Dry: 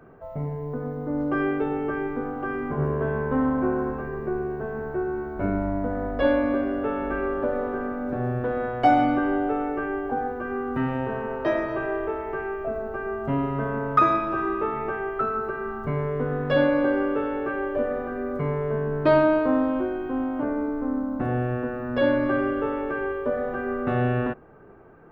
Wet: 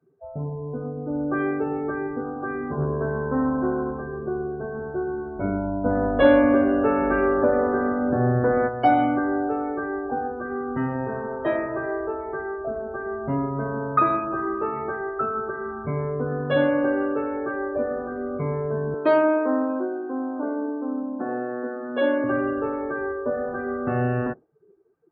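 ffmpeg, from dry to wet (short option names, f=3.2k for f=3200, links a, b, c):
-filter_complex "[0:a]asplit=3[a][b][c];[a]afade=t=out:st=5.84:d=0.02[d];[b]acontrast=58,afade=t=in:st=5.84:d=0.02,afade=t=out:st=8.67:d=0.02[e];[c]afade=t=in:st=8.67:d=0.02[f];[d][e][f]amix=inputs=3:normalize=0,asettb=1/sr,asplit=3[g][h][i];[g]atrim=end=13.484[j];[h]atrim=start=13.48:end=14.61,asetpts=PTS-STARTPTS,afade=t=in:d=0.004:c=qsin,afade=t=out:st=1.126:d=0.004:c=qsin,highshelf=f=2.1k:g=-4[k];[i]atrim=start=14.606[l];[j][k]acrossfade=d=0.004:c1=hsin:c2=qsin[m];[m][l]acrossfade=d=0.004:c1=qsin:c2=hsin,asettb=1/sr,asplit=3[n][o][p];[n]atrim=end=18.944[q];[o]atrim=start=18.94:end=22.24,asetpts=PTS-STARTPTS,afade=t=in:d=0.004:c=qsin,afade=t=out:st=3.296:d=0.004:c=qsin,highpass=f=240:w=0.5412,highpass=f=240:w=1.3066[r];[p]atrim=start=22.236[s];[q][r]acrossfade=d=0.004:c1=hsin:c2=qsin[t];[t][s]acrossfade=d=0.004:c1=qsin:c2=hsin,afftdn=nr=27:nf=-36,highpass=57"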